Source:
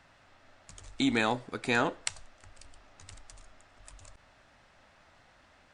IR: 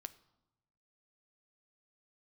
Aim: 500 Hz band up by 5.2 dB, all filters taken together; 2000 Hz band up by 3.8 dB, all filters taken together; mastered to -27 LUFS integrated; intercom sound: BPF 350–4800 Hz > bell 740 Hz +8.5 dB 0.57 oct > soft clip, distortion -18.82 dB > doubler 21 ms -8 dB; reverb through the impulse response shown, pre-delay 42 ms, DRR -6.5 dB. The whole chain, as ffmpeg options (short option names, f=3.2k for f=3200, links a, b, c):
-filter_complex "[0:a]equalizer=f=500:t=o:g=3.5,equalizer=f=2k:t=o:g=4.5,asplit=2[a][b];[1:a]atrim=start_sample=2205,adelay=42[c];[b][c]afir=irnorm=-1:irlink=0,volume=11dB[d];[a][d]amix=inputs=2:normalize=0,highpass=350,lowpass=4.8k,equalizer=f=740:t=o:w=0.57:g=8.5,asoftclip=threshold=-6dB,asplit=2[e][f];[f]adelay=21,volume=-8dB[g];[e][g]amix=inputs=2:normalize=0,volume=-6.5dB"